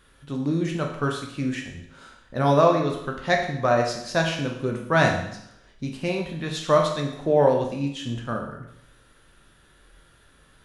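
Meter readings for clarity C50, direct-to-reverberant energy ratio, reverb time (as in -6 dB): 5.5 dB, 1.0 dB, 0.75 s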